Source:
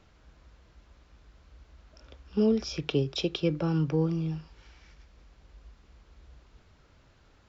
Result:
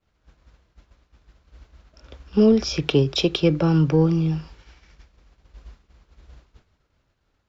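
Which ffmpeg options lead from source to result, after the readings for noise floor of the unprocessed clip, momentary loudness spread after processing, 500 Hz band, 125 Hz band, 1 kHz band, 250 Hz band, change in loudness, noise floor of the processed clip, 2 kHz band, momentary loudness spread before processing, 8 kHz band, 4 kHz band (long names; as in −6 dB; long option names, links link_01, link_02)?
−61 dBFS, 8 LU, +8.5 dB, +9.0 dB, +9.0 dB, +9.0 dB, +9.0 dB, −70 dBFS, +9.0 dB, 8 LU, can't be measured, +9.0 dB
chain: -filter_complex "[0:a]agate=range=-33dB:threshold=-47dB:ratio=3:detection=peak,asplit=2[link_01][link_02];[link_02]asoftclip=type=tanh:threshold=-24dB,volume=-9dB[link_03];[link_01][link_03]amix=inputs=2:normalize=0,volume=7dB"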